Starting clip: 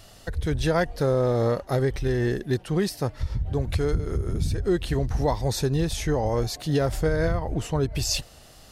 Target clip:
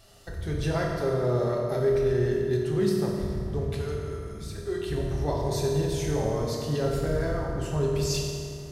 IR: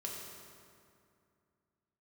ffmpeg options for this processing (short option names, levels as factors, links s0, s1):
-filter_complex "[0:a]asettb=1/sr,asplit=3[s0][s1][s2];[s0]atrim=end=3.684[s3];[s1]atrim=start=3.68:end=4.89,asetpts=PTS-STARTPTS,afade=t=in:d=0.004:c=qsin,afade=t=out:st=1.206:d=0.004:c=qsin,lowshelf=f=370:g=-12[s4];[s2]atrim=start=4.886[s5];[s3][s4]acrossfade=d=0.004:c1=hsin:c2=qsin[s6];[s6][s5]acrossfade=d=0.004:c1=qsin:c2=hsin[s7];[1:a]atrim=start_sample=2205[s8];[s7][s8]afir=irnorm=-1:irlink=0,volume=0.668"